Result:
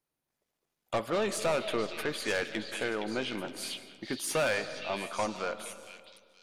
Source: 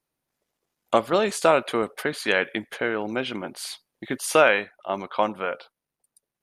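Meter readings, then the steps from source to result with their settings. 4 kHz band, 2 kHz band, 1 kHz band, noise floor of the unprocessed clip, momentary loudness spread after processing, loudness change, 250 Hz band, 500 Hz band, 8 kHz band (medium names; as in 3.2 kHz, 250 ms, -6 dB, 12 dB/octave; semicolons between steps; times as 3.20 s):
-4.5 dB, -9.0 dB, -10.5 dB, under -85 dBFS, 11 LU, -8.5 dB, -7.0 dB, -9.0 dB, -4.0 dB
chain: saturation -19.5 dBFS, distortion -7 dB; repeats whose band climbs or falls 466 ms, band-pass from 3.3 kHz, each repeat 0.7 oct, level -3 dB; algorithmic reverb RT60 1.9 s, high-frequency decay 0.35×, pre-delay 110 ms, DRR 12.5 dB; trim -4.5 dB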